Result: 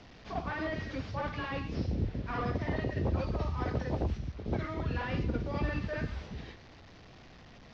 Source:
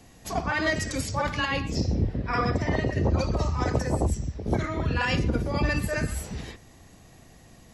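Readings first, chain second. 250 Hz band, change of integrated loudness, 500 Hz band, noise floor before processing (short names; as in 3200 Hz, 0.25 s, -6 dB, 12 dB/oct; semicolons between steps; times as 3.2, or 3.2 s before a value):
-7.0 dB, -8.0 dB, -7.5 dB, -53 dBFS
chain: delta modulation 32 kbps, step -39.5 dBFS; LPF 4100 Hz 12 dB/oct; gain -7 dB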